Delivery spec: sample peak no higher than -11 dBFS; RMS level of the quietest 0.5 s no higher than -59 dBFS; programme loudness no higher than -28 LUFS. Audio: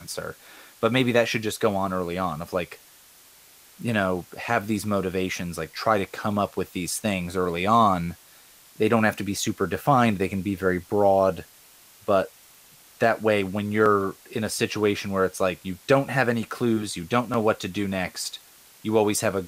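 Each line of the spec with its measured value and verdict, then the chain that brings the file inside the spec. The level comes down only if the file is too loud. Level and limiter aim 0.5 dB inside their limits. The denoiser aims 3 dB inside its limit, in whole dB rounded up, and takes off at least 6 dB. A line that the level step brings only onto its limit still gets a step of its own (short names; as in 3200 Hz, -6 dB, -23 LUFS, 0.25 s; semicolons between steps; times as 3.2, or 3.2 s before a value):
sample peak -5.5 dBFS: fail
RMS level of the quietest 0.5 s -53 dBFS: fail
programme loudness -24.5 LUFS: fail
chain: denoiser 6 dB, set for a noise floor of -53 dBFS; gain -4 dB; limiter -11.5 dBFS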